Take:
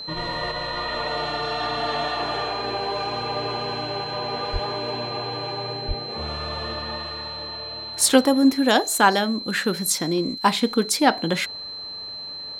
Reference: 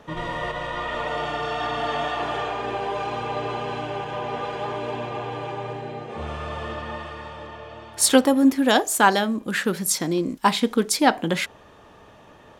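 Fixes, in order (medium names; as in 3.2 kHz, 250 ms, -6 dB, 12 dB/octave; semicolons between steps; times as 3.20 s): band-stop 4.1 kHz, Q 30; 4.52–4.64 s: high-pass 140 Hz 24 dB/octave; 5.87–5.99 s: high-pass 140 Hz 24 dB/octave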